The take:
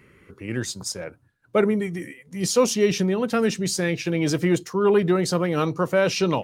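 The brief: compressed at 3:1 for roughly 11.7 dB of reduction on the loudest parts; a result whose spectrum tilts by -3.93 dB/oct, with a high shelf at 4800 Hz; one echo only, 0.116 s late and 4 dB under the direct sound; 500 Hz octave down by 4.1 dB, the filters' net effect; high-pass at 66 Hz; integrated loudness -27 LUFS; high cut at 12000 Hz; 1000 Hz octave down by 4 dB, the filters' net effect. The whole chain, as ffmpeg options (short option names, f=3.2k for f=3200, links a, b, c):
-af "highpass=66,lowpass=12k,equalizer=f=500:t=o:g=-4.5,equalizer=f=1k:t=o:g=-4.5,highshelf=f=4.8k:g=7,acompressor=threshold=-34dB:ratio=3,aecho=1:1:116:0.631,volume=6dB"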